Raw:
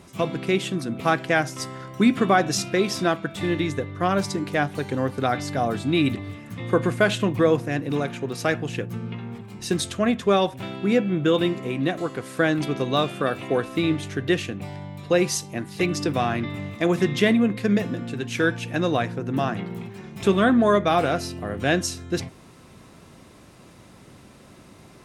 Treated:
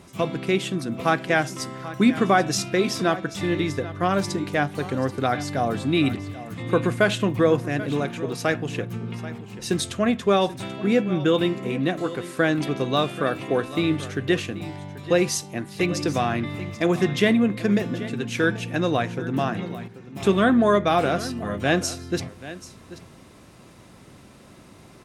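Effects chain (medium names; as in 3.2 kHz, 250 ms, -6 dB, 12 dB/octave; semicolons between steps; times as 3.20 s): 19.76–20.16 s: level held to a coarse grid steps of 12 dB; on a send: delay 785 ms -15.5 dB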